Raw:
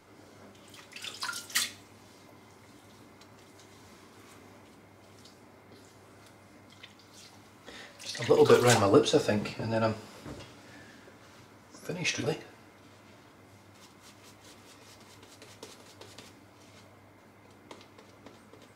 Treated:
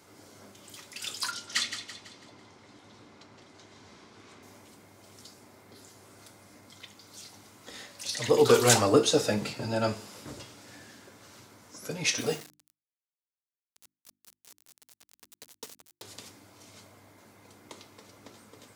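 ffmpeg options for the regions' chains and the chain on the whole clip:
-filter_complex "[0:a]asettb=1/sr,asplit=3[s0][s1][s2];[s0]atrim=end=1.314[s3];[s1]atrim=start=1.31:end=4.43,asetpts=PTS-STARTPTS,afade=t=in:d=0.004:c=qsin,afade=t=out:st=3.116:d=0.004:c=qsin,lowpass=4500,aecho=1:1:166|332|498|664|830:0.335|0.154|0.0709|0.0326|0.015,atrim=end_sample=137592[s4];[s2]atrim=start=4.426[s5];[s3][s4]acrossfade=d=0.004:c1=hsin:c2=qsin[s6];[s6][s5]acrossfade=d=0.004:c1=qsin:c2=hsin,asettb=1/sr,asplit=3[s7][s8][s9];[s7]atrim=end=12.184[s10];[s8]atrim=start=12.18:end=16.02,asetpts=PTS-STARTPTS,afade=t=in:d=0.004:c=qsin,afade=t=out:st=3.836:d=0.004:c=qsin,aecho=1:1:4.3:0.4,atrim=end_sample=169344,aeval=exprs='val(0)*gte(abs(val(0)),0.00668)':c=same,bandreject=f=50:t=h:w=6,bandreject=f=100:t=h:w=6,bandreject=f=150:t=h:w=6,bandreject=f=200:t=h:w=6,bandreject=f=250:t=h:w=6,bandreject=f=300:t=h:w=6,bandreject=f=350:t=h:w=6[s11];[s9]atrim=start=16.016[s12];[s10][s11]acrossfade=d=0.004:c1=hsin:c2=qsin[s13];[s13][s12]acrossfade=d=0.004:c1=qsin:c2=hsin,highpass=69,bass=f=250:g=0,treble=f=4000:g=8"

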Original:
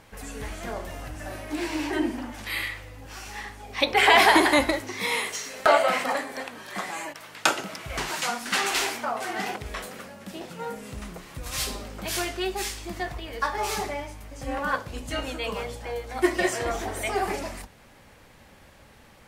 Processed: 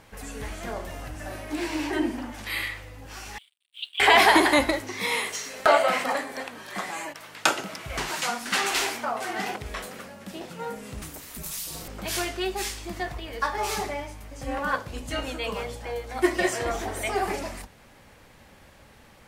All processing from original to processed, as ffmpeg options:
-filter_complex "[0:a]asettb=1/sr,asplit=3[s0][s1][s2];[s0]atrim=end=3.384[s3];[s1]atrim=start=3.38:end=4,asetpts=PTS-STARTPTS,afade=t=in:d=0.004:c=qsin,afade=t=out:st=0.616:d=0.004:c=qsin,asuperpass=centerf=2900:order=4:qfactor=5,aeval=exprs='sgn(val(0))*max(abs(val(0))-0.00133,0)':c=same,afreqshift=320[s4];[s2]atrim=start=3.996[s5];[s3][s4]acrossfade=d=0.004:c1=hsin:c2=qsin[s6];[s6][s5]acrossfade=d=0.004:c1=qsin:c2=hsin,asettb=1/sr,asplit=3[s7][s8][s9];[s7]atrim=end=11.024[s10];[s8]atrim=start=11.02:end=11.88,asetpts=PTS-STARTPTS,afade=t=in:d=0.004:c=qsin,afade=t=out:st=0.856:d=0.004:c=qsin,aemphasis=mode=production:type=75fm,acompressor=threshold=0.0398:ratio=6:attack=3.2:release=140:knee=1:detection=peak,aeval=exprs='val(0)*sin(2*PI*110*n/s)':c=same[s11];[s9]atrim=start=11.876[s12];[s10][s11]acrossfade=d=0.004:c1=hsin:c2=qsin[s13];[s13][s12]acrossfade=d=0.004:c1=qsin:c2=hsin"

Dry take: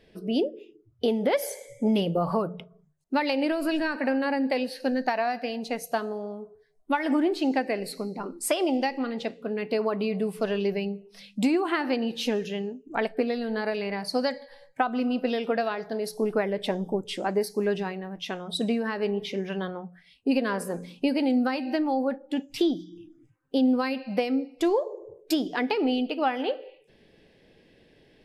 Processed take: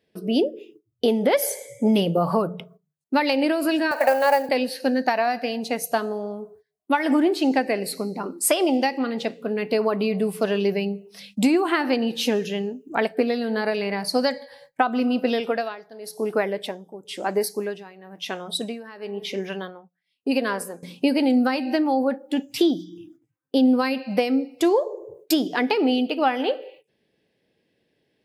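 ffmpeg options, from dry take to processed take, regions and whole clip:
-filter_complex "[0:a]asettb=1/sr,asplit=3[s0][s1][s2];[s0]atrim=end=3.914[s3];[s1]atrim=start=3.91:end=4.49,asetpts=PTS-STARTPTS,afade=t=in:d=0.004:c=qsin,afade=t=out:st=0.576:d=0.004:c=qsin,highpass=f=660:t=q:w=4.2,highshelf=f=5600:g=5,acrusher=bits=7:mode=log:mix=0:aa=0.000001[s4];[s2]atrim=start=4.486[s5];[s3][s4]acrossfade=d=0.004:c1=hsin:c2=qsin[s6];[s6][s5]acrossfade=d=0.004:c1=qsin:c2=hsin,asettb=1/sr,asplit=3[s7][s8][s9];[s7]atrim=end=15.404[s10];[s8]atrim=start=15.4:end=20.83,asetpts=PTS-STARTPTS,afade=t=in:d=0.004:c=qsin,afade=t=out:st=5.426:d=0.004:c=qsin,equalizer=f=63:w=0.37:g=-10,tremolo=f=1:d=0.82[s11];[s9]atrim=start=20.826[s12];[s10][s11]acrossfade=d=0.004:c1=hsin:c2=qsin[s13];[s13][s12]acrossfade=d=0.004:c1=qsin:c2=hsin,agate=range=0.158:threshold=0.00224:ratio=16:detection=peak,highpass=94,highshelf=f=9500:g=9.5,volume=1.68"

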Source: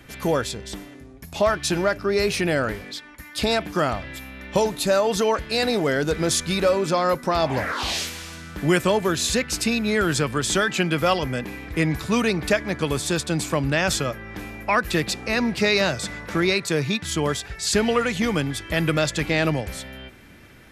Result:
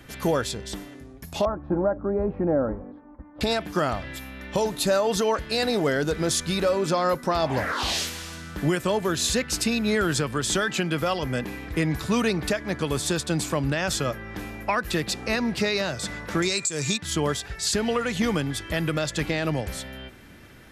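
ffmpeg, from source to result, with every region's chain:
-filter_complex "[0:a]asettb=1/sr,asplit=3[s0][s1][s2];[s0]atrim=end=1.454[s3];[s1]atrim=start=1.45:end=3.41,asetpts=PTS-STARTPTS,afade=t=in:d=0.004:c=qsin,afade=t=out:st=1.956:d=0.004:c=qsin,lowpass=f=1000:w=0.5412,lowpass=f=1000:w=1.3066,aecho=1:1:3.7:0.42,atrim=end_sample=86436[s4];[s2]atrim=start=3.406[s5];[s3][s4]acrossfade=d=0.004:c1=hsin:c2=qsin[s6];[s6][s5]acrossfade=d=0.004:c1=qsin:c2=hsin,asettb=1/sr,asplit=3[s7][s8][s9];[s7]atrim=end=16.424[s10];[s8]atrim=start=16.42:end=16.98,asetpts=PTS-STARTPTS,afade=t=in:d=0.004:c=qsin,afade=t=out:st=0.556:d=0.004:c=qsin,aemphasis=mode=production:type=50kf,aeval=exprs='val(0)+0.0224*sin(2*PI*2400*n/s)':c=same,lowpass=f=7500:t=q:w=13[s11];[s9]atrim=start=16.976[s12];[s10][s11]acrossfade=d=0.004:c1=hsin:c2=qsin[s13];[s13][s12]acrossfade=d=0.004:c1=qsin:c2=hsin,equalizer=f=2300:t=o:w=0.31:g=-3.5,alimiter=limit=0.211:level=0:latency=1:release=237"

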